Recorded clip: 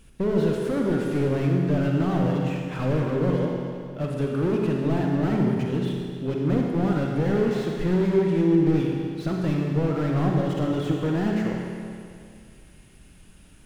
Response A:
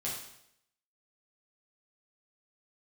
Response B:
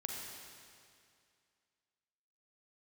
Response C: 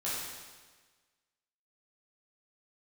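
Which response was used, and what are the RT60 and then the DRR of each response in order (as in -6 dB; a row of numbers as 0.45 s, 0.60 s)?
B; 0.75 s, 2.3 s, 1.4 s; -6.0 dB, -0.5 dB, -9.5 dB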